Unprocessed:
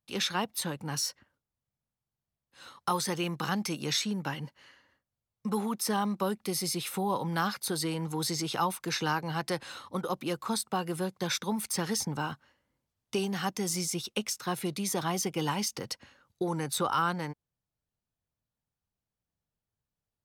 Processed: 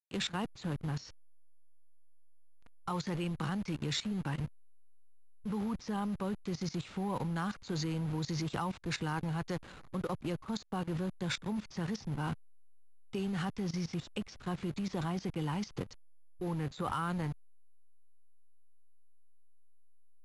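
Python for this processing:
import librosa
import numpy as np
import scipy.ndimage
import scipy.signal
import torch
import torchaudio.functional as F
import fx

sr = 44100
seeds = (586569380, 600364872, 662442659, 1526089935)

y = fx.delta_hold(x, sr, step_db=-37.5)
y = (np.kron(scipy.signal.resample_poly(y, 1, 4), np.eye(4)[0]) * 4)[:len(y)]
y = scipy.signal.sosfilt(scipy.signal.butter(4, 6100.0, 'lowpass', fs=sr, output='sos'), y)
y = fx.bass_treble(y, sr, bass_db=9, treble_db=-5)
y = fx.level_steps(y, sr, step_db=17)
y = fx.transformer_sat(y, sr, knee_hz=140.0)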